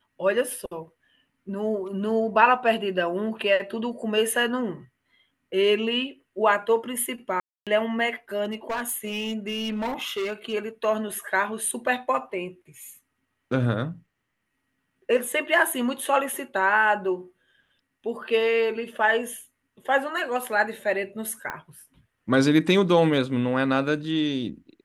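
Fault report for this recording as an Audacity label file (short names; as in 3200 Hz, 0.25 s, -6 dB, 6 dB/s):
7.400000	7.670000	gap 0.267 s
8.440000	10.540000	clipped -24.5 dBFS
21.500000	21.500000	pop -17 dBFS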